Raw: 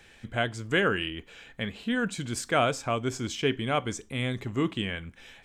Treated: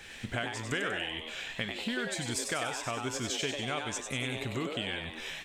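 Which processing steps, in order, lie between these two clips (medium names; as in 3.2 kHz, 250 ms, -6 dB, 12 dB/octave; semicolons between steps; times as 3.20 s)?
tilt shelf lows -4 dB, about 1.2 kHz; compression 6:1, threshold -39 dBFS, peak gain reduction 18 dB; frequency-shifting echo 96 ms, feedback 55%, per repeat +150 Hz, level -5.5 dB; tape noise reduction on one side only decoder only; trim +6.5 dB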